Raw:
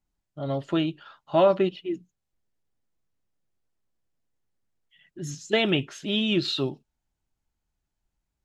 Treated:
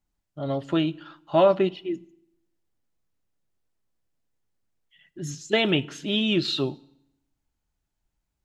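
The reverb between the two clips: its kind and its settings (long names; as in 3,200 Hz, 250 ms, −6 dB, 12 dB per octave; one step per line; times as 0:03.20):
feedback delay network reverb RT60 0.76 s, low-frequency decay 1.25×, high-frequency decay 0.95×, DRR 19 dB
level +1 dB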